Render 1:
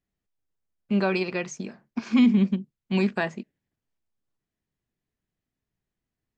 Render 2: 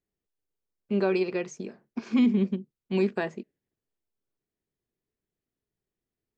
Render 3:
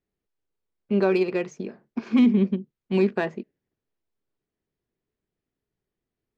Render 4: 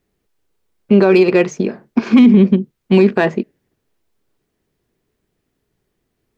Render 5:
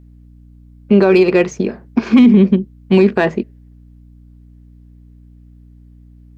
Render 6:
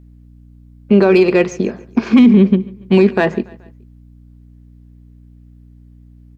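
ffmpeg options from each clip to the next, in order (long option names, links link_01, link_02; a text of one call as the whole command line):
ffmpeg -i in.wav -af "equalizer=frequency=410:width=1.6:gain=9.5,volume=-6dB" out.wav
ffmpeg -i in.wav -af "adynamicsmooth=sensitivity=3.5:basefreq=4500,volume=4dB" out.wav
ffmpeg -i in.wav -af "alimiter=level_in=16dB:limit=-1dB:release=50:level=0:latency=1,volume=-1dB" out.wav
ffmpeg -i in.wav -af "aeval=exprs='val(0)+0.00891*(sin(2*PI*60*n/s)+sin(2*PI*2*60*n/s)/2+sin(2*PI*3*60*n/s)/3+sin(2*PI*4*60*n/s)/4+sin(2*PI*5*60*n/s)/5)':channel_layout=same" out.wav
ffmpeg -i in.wav -af "aecho=1:1:142|284|426:0.0841|0.0395|0.0186" out.wav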